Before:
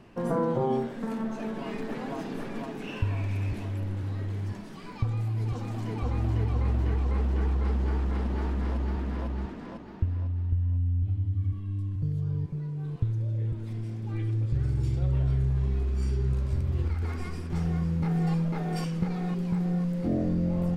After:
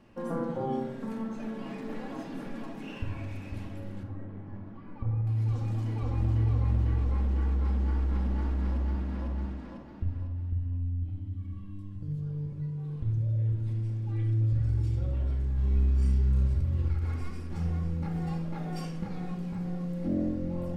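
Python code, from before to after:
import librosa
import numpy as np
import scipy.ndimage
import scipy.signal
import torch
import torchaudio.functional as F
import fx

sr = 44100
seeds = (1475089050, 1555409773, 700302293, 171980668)

y = fx.lowpass(x, sr, hz=1400.0, slope=12, at=(4.03, 5.27))
y = fx.doubler(y, sr, ms=30.0, db=-3.5, at=(15.55, 16.48))
y = fx.room_shoebox(y, sr, seeds[0], volume_m3=2100.0, walls='furnished', distance_m=2.3)
y = y * librosa.db_to_amplitude(-7.0)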